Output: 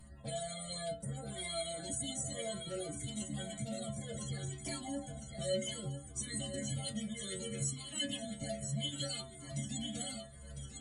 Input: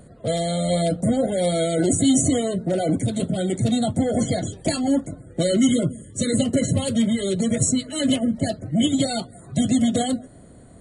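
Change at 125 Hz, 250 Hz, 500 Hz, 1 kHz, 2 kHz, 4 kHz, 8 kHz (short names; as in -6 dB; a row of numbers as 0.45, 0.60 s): -16.0, -23.5, -18.5, -17.5, -13.0, -11.0, -13.0 dB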